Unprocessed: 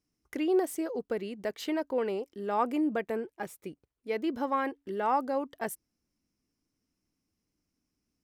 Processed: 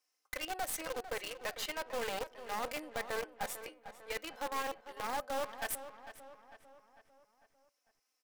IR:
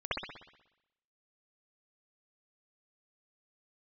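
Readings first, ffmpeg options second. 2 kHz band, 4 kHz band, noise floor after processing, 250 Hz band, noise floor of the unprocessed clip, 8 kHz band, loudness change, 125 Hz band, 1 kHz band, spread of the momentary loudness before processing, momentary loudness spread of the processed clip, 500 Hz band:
+0.5 dB, +4.0 dB, -83 dBFS, -18.5 dB, -84 dBFS, +4.5 dB, -7.5 dB, -7.5 dB, -6.5 dB, 12 LU, 15 LU, -9.5 dB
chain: -filter_complex "[0:a]highpass=f=590:w=0.5412,highpass=f=590:w=1.3066,aecho=1:1:3.9:0.62,alimiter=level_in=1.06:limit=0.0631:level=0:latency=1:release=49,volume=0.944,areverse,acompressor=threshold=0.00794:ratio=6,areverse,asoftclip=type=tanh:threshold=0.0106,flanger=delay=8.5:depth=1.4:regen=85:speed=0.38:shape=triangular,asplit=2[s0][s1];[s1]acrusher=bits=5:dc=4:mix=0:aa=0.000001,volume=1.26[s2];[s0][s2]amix=inputs=2:normalize=0,asplit=2[s3][s4];[s4]adelay=449,lowpass=f=3600:p=1,volume=0.251,asplit=2[s5][s6];[s6]adelay=449,lowpass=f=3600:p=1,volume=0.52,asplit=2[s7][s8];[s8]adelay=449,lowpass=f=3600:p=1,volume=0.52,asplit=2[s9][s10];[s10]adelay=449,lowpass=f=3600:p=1,volume=0.52,asplit=2[s11][s12];[s12]adelay=449,lowpass=f=3600:p=1,volume=0.52[s13];[s3][s5][s7][s9][s11][s13]amix=inputs=6:normalize=0,volume=2.51"

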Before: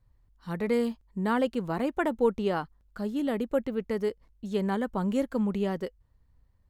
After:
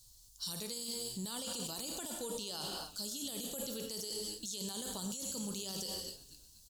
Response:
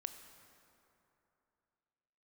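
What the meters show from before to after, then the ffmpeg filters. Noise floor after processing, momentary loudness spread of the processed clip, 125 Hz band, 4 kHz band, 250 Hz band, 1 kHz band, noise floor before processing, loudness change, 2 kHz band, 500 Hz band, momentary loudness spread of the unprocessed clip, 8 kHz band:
-61 dBFS, 3 LU, -13.0 dB, +7.5 dB, -16.0 dB, -16.0 dB, -65 dBFS, -9.5 dB, -16.5 dB, -17.0 dB, 9 LU, no reading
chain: -filter_complex "[0:a]equalizer=f=750:w=1.5:g=2[s0];[1:a]atrim=start_sample=2205,afade=t=out:st=0.37:d=0.01,atrim=end_sample=16758,asetrate=48510,aresample=44100[s1];[s0][s1]afir=irnorm=-1:irlink=0,areverse,acompressor=threshold=0.0224:ratio=6,areverse,equalizer=f=6500:w=0.75:g=8,asplit=4[s2][s3][s4][s5];[s3]adelay=240,afreqshift=-110,volume=0.0841[s6];[s4]adelay=480,afreqshift=-220,volume=0.0327[s7];[s5]adelay=720,afreqshift=-330,volume=0.0127[s8];[s2][s6][s7][s8]amix=inputs=4:normalize=0,aexciter=amount=11.4:drive=9.7:freq=3300,alimiter=level_in=2.24:limit=0.0631:level=0:latency=1:release=24,volume=0.447"

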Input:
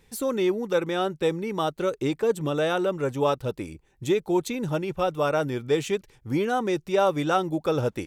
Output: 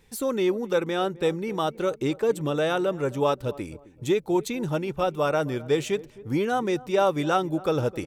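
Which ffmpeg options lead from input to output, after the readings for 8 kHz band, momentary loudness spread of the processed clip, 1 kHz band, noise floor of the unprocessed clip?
0.0 dB, 5 LU, 0.0 dB, -62 dBFS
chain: -filter_complex "[0:a]asplit=2[s0][s1];[s1]adelay=261,lowpass=f=840:p=1,volume=0.126,asplit=2[s2][s3];[s3]adelay=261,lowpass=f=840:p=1,volume=0.38,asplit=2[s4][s5];[s5]adelay=261,lowpass=f=840:p=1,volume=0.38[s6];[s0][s2][s4][s6]amix=inputs=4:normalize=0"

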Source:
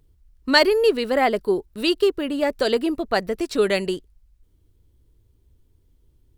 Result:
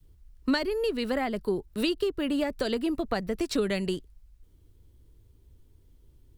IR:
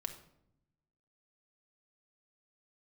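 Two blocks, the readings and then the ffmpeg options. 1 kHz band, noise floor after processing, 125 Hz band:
-11.0 dB, -60 dBFS, -0.5 dB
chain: -filter_complex "[0:a]adynamicequalizer=threshold=0.0355:dfrequency=450:dqfactor=1.2:tfrequency=450:tqfactor=1.2:attack=5:release=100:ratio=0.375:range=2.5:mode=cutabove:tftype=bell,acrossover=split=220[s0][s1];[s1]acompressor=threshold=0.0355:ratio=8[s2];[s0][s2]amix=inputs=2:normalize=0,volume=1.26"

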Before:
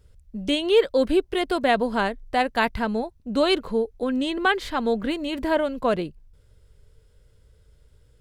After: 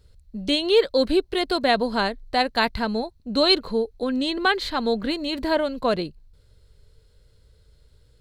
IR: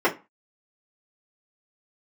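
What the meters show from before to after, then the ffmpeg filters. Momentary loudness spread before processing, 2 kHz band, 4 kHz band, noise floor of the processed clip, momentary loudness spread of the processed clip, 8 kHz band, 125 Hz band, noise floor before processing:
8 LU, 0.0 dB, +5.5 dB, -58 dBFS, 8 LU, +0.5 dB, 0.0 dB, -58 dBFS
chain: -af "equalizer=f=4200:t=o:w=0.26:g=13"

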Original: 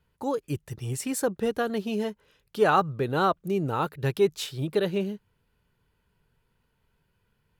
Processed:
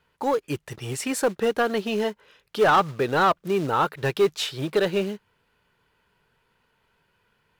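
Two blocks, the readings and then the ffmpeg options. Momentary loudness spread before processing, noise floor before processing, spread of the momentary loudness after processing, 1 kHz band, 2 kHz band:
11 LU, -73 dBFS, 12 LU, +4.5 dB, +6.0 dB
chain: -filter_complex "[0:a]acrusher=bits=6:mode=log:mix=0:aa=0.000001,asplit=2[s0][s1];[s1]highpass=f=720:p=1,volume=6.31,asoftclip=type=tanh:threshold=0.316[s2];[s0][s2]amix=inputs=2:normalize=0,lowpass=f=3300:p=1,volume=0.501"

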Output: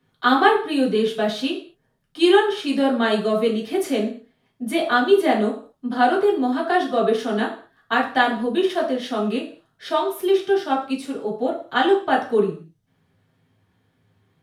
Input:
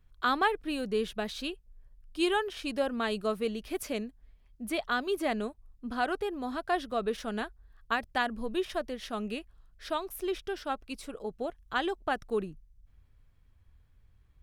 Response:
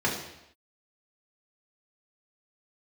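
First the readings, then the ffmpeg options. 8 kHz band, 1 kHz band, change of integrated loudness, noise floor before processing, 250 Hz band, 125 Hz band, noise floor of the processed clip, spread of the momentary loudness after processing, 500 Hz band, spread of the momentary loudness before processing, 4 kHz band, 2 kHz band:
+6.0 dB, +12.0 dB, +12.0 dB, -63 dBFS, +13.0 dB, no reading, -68 dBFS, 11 LU, +13.5 dB, 10 LU, +10.5 dB, +10.0 dB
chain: -filter_complex "[1:a]atrim=start_sample=2205,asetrate=83790,aresample=44100[s0];[0:a][s0]afir=irnorm=-1:irlink=0,volume=1.41"

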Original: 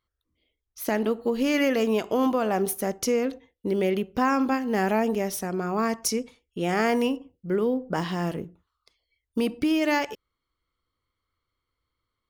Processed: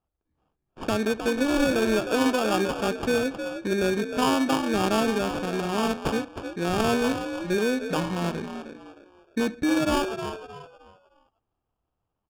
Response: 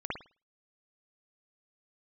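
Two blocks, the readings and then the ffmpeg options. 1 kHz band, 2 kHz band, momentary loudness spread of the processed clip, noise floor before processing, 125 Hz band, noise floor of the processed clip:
+0.5 dB, +2.0 dB, 11 LU, -83 dBFS, +1.5 dB, -81 dBFS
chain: -filter_complex "[0:a]asplit=5[s0][s1][s2][s3][s4];[s1]adelay=310,afreqshift=61,volume=0.376[s5];[s2]adelay=620,afreqshift=122,volume=0.12[s6];[s3]adelay=930,afreqshift=183,volume=0.0385[s7];[s4]adelay=1240,afreqshift=244,volume=0.0123[s8];[s0][s5][s6][s7][s8]amix=inputs=5:normalize=0,acrusher=samples=22:mix=1:aa=0.000001,adynamicsmooth=sensitivity=3.5:basefreq=3400"

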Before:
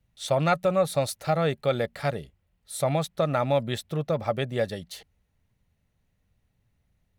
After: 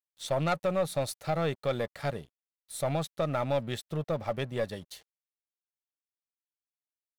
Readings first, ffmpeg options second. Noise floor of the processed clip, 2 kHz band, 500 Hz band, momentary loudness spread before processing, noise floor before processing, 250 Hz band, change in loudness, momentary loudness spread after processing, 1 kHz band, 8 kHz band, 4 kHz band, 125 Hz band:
under -85 dBFS, -5.0 dB, -5.5 dB, 10 LU, -74 dBFS, -4.5 dB, -5.0 dB, 9 LU, -5.5 dB, -4.5 dB, -5.0 dB, -5.0 dB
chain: -af "aeval=exprs='0.335*(cos(1*acos(clip(val(0)/0.335,-1,1)))-cos(1*PI/2))+0.0376*(cos(3*acos(clip(val(0)/0.335,-1,1)))-cos(3*PI/2))+0.0422*(cos(5*acos(clip(val(0)/0.335,-1,1)))-cos(5*PI/2))+0.0106*(cos(8*acos(clip(val(0)/0.335,-1,1)))-cos(8*PI/2))':c=same,aeval=exprs='sgn(val(0))*max(abs(val(0))-0.00398,0)':c=same,volume=0.531"

